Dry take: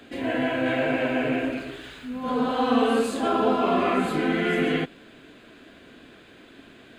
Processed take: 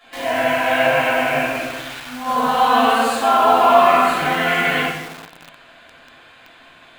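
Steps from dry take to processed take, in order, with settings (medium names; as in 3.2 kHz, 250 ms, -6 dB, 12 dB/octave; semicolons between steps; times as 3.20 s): simulated room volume 320 m³, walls mixed, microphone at 5.9 m; in parallel at -5 dB: bit crusher 4-bit; on the sum: resonant low shelf 540 Hz -13 dB, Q 1.5; trim -7.5 dB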